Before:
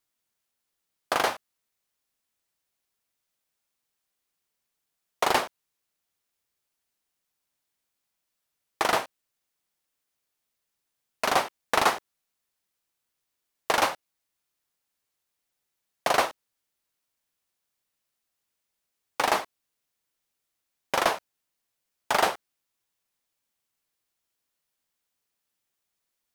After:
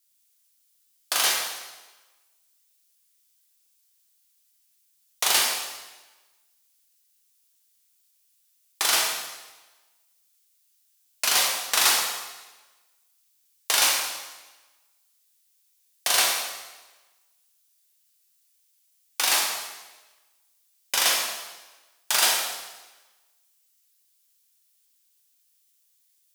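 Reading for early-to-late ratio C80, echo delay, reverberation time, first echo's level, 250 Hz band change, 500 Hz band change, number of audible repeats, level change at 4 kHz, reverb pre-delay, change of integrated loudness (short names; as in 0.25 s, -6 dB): 4.0 dB, none, 1.2 s, none, -9.0 dB, -8.0 dB, none, +10.0 dB, 7 ms, +4.0 dB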